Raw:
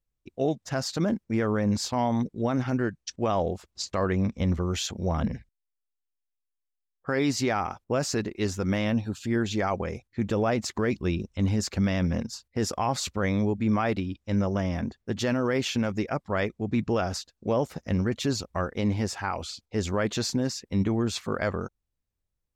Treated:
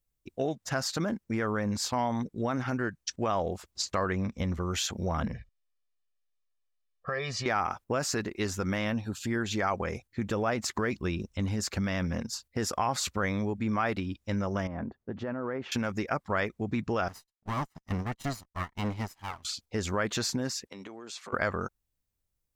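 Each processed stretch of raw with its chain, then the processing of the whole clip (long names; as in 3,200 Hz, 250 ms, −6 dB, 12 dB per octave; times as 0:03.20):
0:05.33–0:07.46: low-pass filter 4,500 Hz + comb filter 1.7 ms, depth 98% + downward compressor 3 to 1, threshold −34 dBFS
0:14.67–0:15.72: low-pass filter 1,200 Hz + low-shelf EQ 82 Hz −11 dB + downward compressor 4 to 1, threshold −31 dBFS
0:17.08–0:19.45: lower of the sound and its delayed copy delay 1 ms + expander for the loud parts 2.5 to 1, over −42 dBFS
0:20.67–0:21.33: band-pass filter 440–7,900 Hz + downward compressor 10 to 1, threshold −40 dBFS
whole clip: high-shelf EQ 7,200 Hz +8.5 dB; downward compressor 2.5 to 1, threshold −30 dBFS; dynamic equaliser 1,400 Hz, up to +7 dB, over −48 dBFS, Q 0.85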